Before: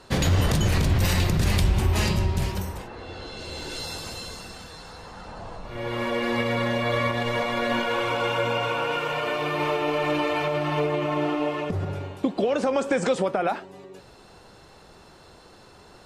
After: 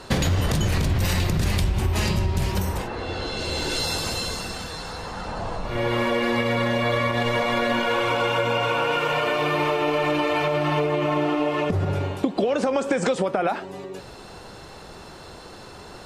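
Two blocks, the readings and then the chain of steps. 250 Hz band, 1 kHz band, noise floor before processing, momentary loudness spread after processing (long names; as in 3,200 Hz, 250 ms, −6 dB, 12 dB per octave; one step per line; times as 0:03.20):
+2.0 dB, +3.0 dB, −50 dBFS, 19 LU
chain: downward compressor 5 to 1, threshold −28 dBFS, peak gain reduction 11.5 dB
level +8.5 dB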